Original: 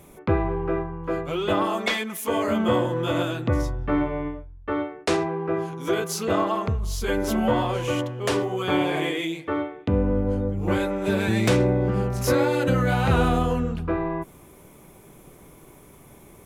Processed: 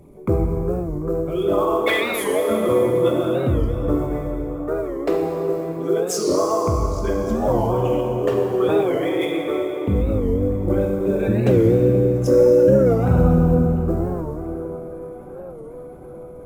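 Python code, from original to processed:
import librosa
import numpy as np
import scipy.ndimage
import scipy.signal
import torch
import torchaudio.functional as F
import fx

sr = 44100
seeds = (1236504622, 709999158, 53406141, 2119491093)

p1 = fx.envelope_sharpen(x, sr, power=2.0)
p2 = fx.sample_hold(p1, sr, seeds[0], rate_hz=14000.0, jitter_pct=20)
p3 = p1 + F.gain(torch.from_numpy(p2), -10.0).numpy()
p4 = fx.peak_eq(p3, sr, hz=7700.0, db=6.0, octaves=0.65)
p5 = p4 + fx.echo_wet_bandpass(p4, sr, ms=745, feedback_pct=73, hz=800.0, wet_db=-15.5, dry=0)
p6 = fx.rev_plate(p5, sr, seeds[1], rt60_s=3.0, hf_ratio=0.9, predelay_ms=0, drr_db=0.0)
y = fx.record_warp(p6, sr, rpm=45.0, depth_cents=160.0)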